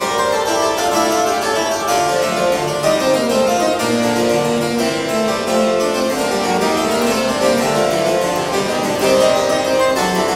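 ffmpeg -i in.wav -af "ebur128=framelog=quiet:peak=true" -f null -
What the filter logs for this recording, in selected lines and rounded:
Integrated loudness:
  I:         -15.7 LUFS
  Threshold: -25.7 LUFS
Loudness range:
  LRA:         1.0 LU
  Threshold: -35.8 LUFS
  LRA low:   -16.3 LUFS
  LRA high:  -15.3 LUFS
True peak:
  Peak:       -2.4 dBFS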